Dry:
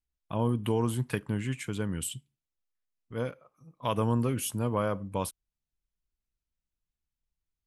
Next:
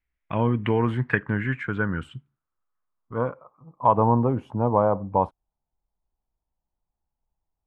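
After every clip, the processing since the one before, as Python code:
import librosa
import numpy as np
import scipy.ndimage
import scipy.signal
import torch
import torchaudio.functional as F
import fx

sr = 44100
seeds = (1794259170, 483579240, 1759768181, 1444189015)

y = fx.filter_sweep_lowpass(x, sr, from_hz=2100.0, to_hz=840.0, start_s=0.46, end_s=4.19, q=4.1)
y = y * 10.0 ** (5.0 / 20.0)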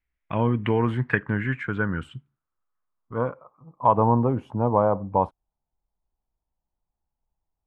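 y = x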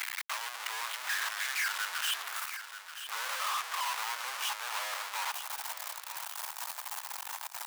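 y = np.sign(x) * np.sqrt(np.mean(np.square(x)))
y = scipy.signal.sosfilt(scipy.signal.butter(4, 950.0, 'highpass', fs=sr, output='sos'), y)
y = fx.echo_feedback(y, sr, ms=932, feedback_pct=31, wet_db=-11)
y = y * 10.0 ** (-4.0 / 20.0)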